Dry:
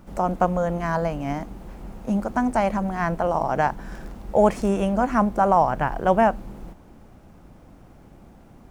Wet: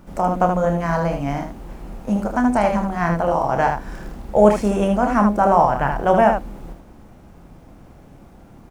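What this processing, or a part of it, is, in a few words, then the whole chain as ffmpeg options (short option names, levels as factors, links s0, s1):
slapback doubling: -filter_complex "[0:a]asplit=3[s0][s1][s2];[s1]adelay=29,volume=0.447[s3];[s2]adelay=77,volume=0.531[s4];[s0][s3][s4]amix=inputs=3:normalize=0,volume=1.26"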